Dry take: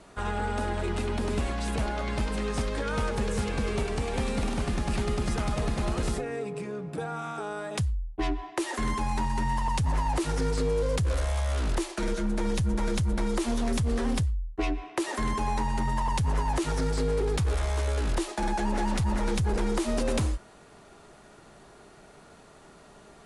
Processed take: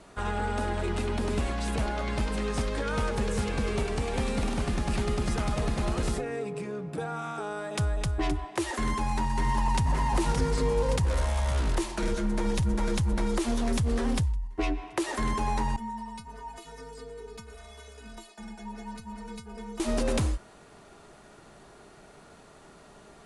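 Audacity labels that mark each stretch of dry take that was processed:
7.510000	7.920000	echo throw 260 ms, feedback 45%, level -2.5 dB
8.810000	9.910000	echo throw 570 ms, feedback 70%, level -6 dB
15.760000	19.800000	inharmonic resonator 220 Hz, decay 0.28 s, inharmonicity 0.008

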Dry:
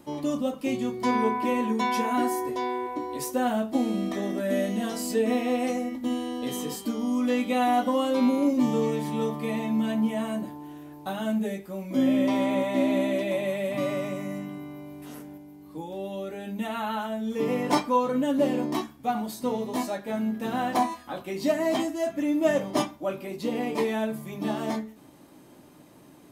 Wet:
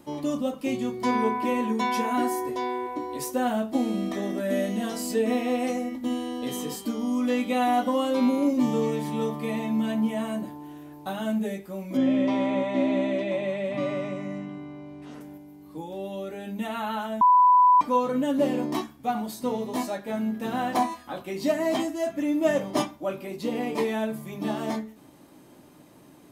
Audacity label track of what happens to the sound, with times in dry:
11.970000	15.210000	distance through air 100 m
17.210000	17.810000	bleep 995 Hz -13.5 dBFS

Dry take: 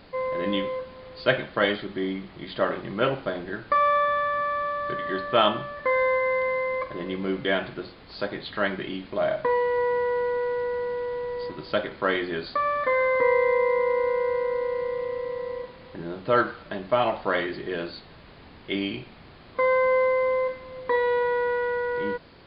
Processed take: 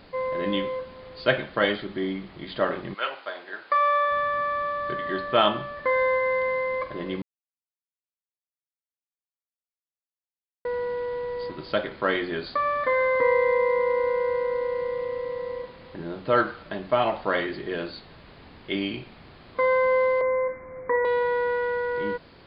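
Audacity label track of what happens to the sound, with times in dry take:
2.930000	4.100000	high-pass 1.1 kHz -> 420 Hz
7.220000	10.650000	mute
20.210000	21.050000	Chebyshev low-pass 2.3 kHz, order 8

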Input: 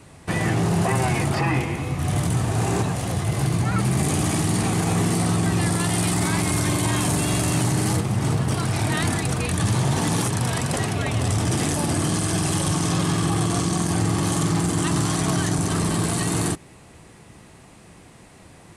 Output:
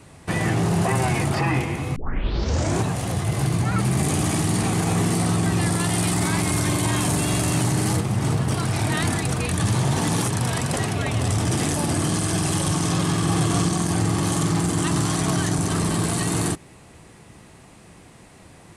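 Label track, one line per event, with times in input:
1.960000	1.960000	tape start 0.86 s
12.860000	13.260000	echo throw 420 ms, feedback 10%, level -5.5 dB

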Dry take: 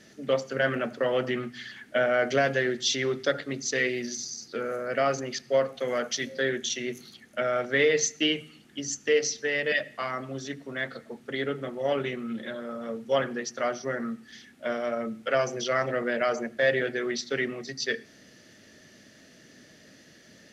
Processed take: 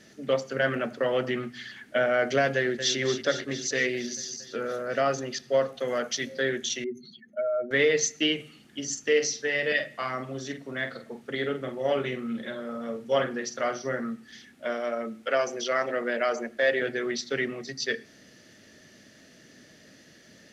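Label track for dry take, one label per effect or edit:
2.550000	2.980000	echo throw 230 ms, feedback 75%, level -9.5 dB
4.260000	6.010000	band-stop 2.2 kHz
6.840000	7.710000	spectral contrast enhancement exponent 2.4
8.350000	14.000000	doubling 47 ms -9 dB
14.650000	16.820000	peaking EQ 130 Hz -13.5 dB

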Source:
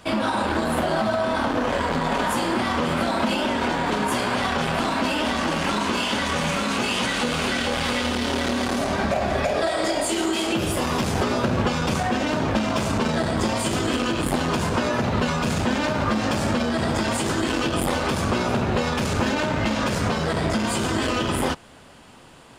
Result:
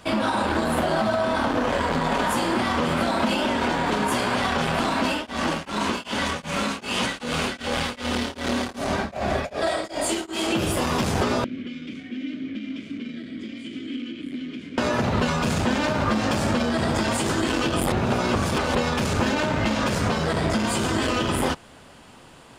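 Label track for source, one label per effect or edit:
5.080000	10.460000	tremolo of two beating tones nulls at 2.6 Hz
11.440000	14.780000	vowel filter i
17.920000	18.750000	reverse

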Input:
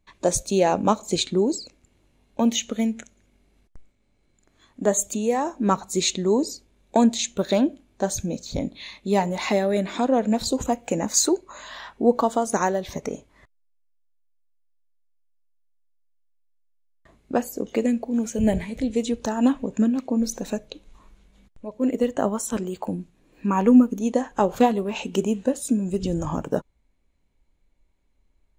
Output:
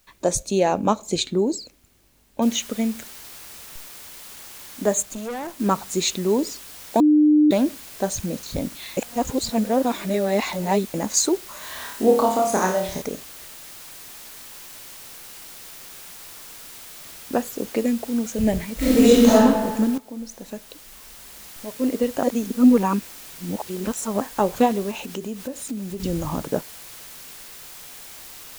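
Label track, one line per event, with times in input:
2.420000	2.420000	noise floor step -63 dB -41 dB
5.020000	5.600000	valve stage drive 27 dB, bias 0.75
7.000000	7.510000	bleep 301 Hz -11.5 dBFS
8.970000	10.940000	reverse
11.580000	13.020000	flutter echo walls apart 4.7 m, dies away in 0.49 s
18.760000	19.330000	reverb throw, RT60 1.6 s, DRR -12 dB
19.980000	21.700000	fade in, from -15 dB
22.230000	24.210000	reverse
24.910000	26.000000	compression 2.5:1, threshold -30 dBFS

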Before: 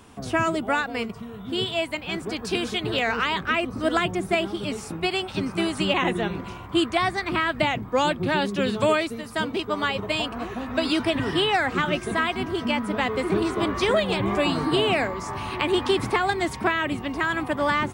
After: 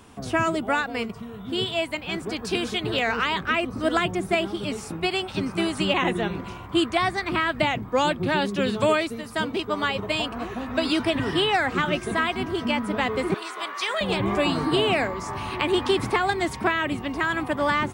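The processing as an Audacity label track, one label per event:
13.340000	14.010000	high-pass 1 kHz

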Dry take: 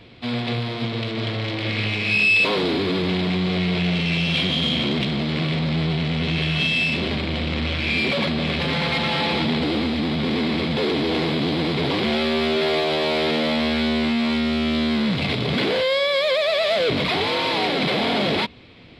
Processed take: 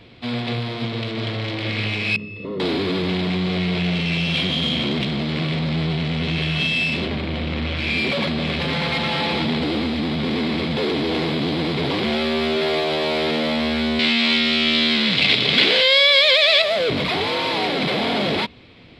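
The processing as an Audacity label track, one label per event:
2.160000	2.600000	boxcar filter over 56 samples
7.050000	7.760000	treble shelf 3.5 kHz -> 5.6 kHz -8.5 dB
13.990000	16.620000	frequency weighting D

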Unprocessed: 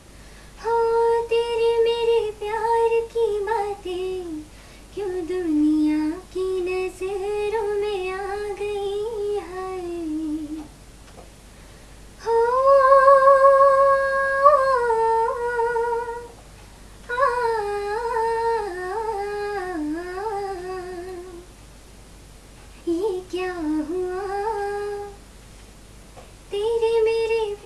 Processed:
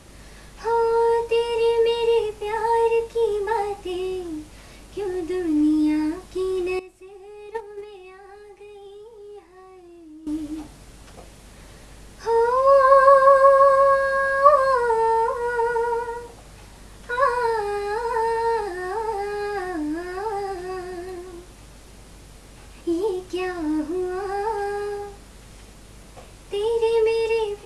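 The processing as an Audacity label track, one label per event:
6.790000	10.270000	gate -22 dBFS, range -16 dB

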